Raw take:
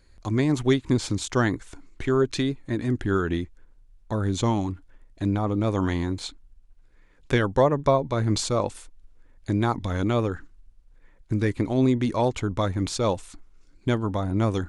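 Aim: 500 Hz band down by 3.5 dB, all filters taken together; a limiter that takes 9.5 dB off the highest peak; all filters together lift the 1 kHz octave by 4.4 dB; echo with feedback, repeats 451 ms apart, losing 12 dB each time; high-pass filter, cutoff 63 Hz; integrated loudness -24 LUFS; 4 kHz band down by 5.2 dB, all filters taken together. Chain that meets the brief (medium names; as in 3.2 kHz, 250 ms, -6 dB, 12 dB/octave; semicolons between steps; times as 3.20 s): high-pass 63 Hz; peaking EQ 500 Hz -6.5 dB; peaking EQ 1 kHz +7.5 dB; peaking EQ 4 kHz -6.5 dB; peak limiter -17.5 dBFS; feedback delay 451 ms, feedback 25%, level -12 dB; trim +5 dB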